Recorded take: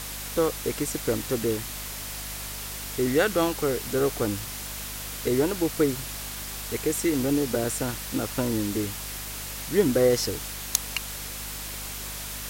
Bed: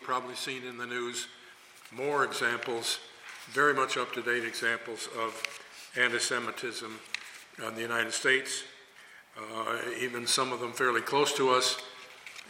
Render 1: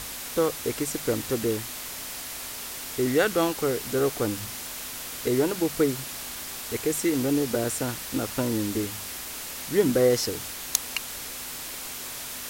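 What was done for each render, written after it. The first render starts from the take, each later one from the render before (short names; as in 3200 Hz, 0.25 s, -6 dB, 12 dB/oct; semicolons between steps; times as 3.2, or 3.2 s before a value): de-hum 50 Hz, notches 4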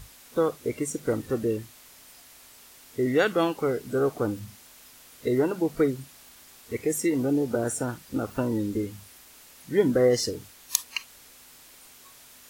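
noise print and reduce 15 dB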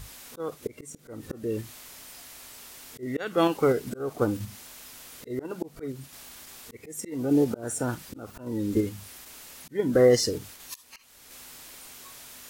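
auto swell 0.35 s; in parallel at -1.5 dB: level quantiser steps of 13 dB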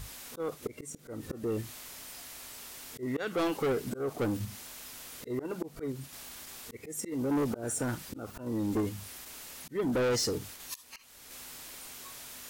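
soft clip -25.5 dBFS, distortion -6 dB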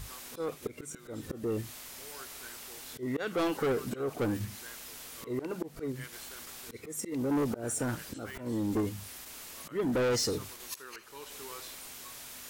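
add bed -21.5 dB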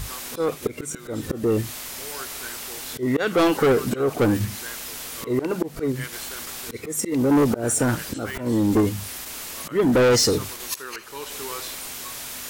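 gain +11.5 dB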